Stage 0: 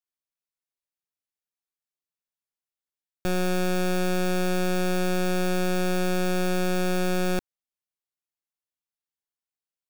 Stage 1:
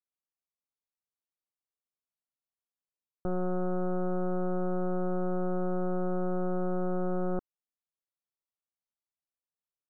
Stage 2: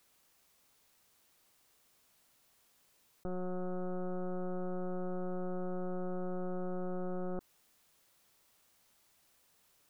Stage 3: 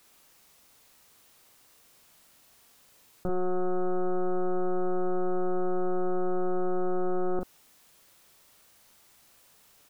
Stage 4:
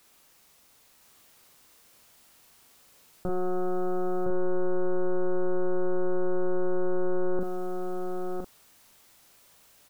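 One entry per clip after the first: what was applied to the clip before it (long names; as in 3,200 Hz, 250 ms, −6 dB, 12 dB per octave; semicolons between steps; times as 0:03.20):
elliptic low-pass filter 1,300 Hz, stop band 40 dB; level −4.5 dB
envelope flattener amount 50%; level −7.5 dB
double-tracking delay 41 ms −4.5 dB; level +8.5 dB
single-tap delay 1,013 ms −4 dB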